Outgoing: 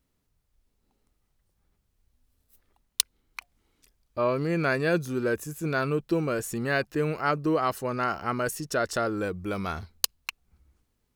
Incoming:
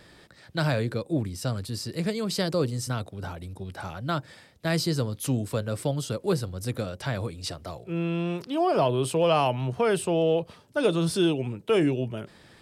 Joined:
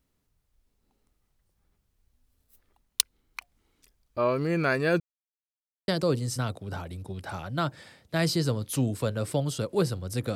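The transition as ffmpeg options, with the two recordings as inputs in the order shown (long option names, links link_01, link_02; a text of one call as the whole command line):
ffmpeg -i cue0.wav -i cue1.wav -filter_complex "[0:a]apad=whole_dur=10.35,atrim=end=10.35,asplit=2[link_01][link_02];[link_01]atrim=end=5,asetpts=PTS-STARTPTS,afade=type=out:start_time=4.996:duration=0.004:curve=hsin[link_03];[link_02]atrim=start=5:end=5.88,asetpts=PTS-STARTPTS,volume=0[link_04];[1:a]atrim=start=2.39:end=6.86,asetpts=PTS-STARTPTS,afade=type=in:duration=0.004:curve=hsin[link_05];[link_03][link_04][link_05]concat=n=3:v=0:a=1" out.wav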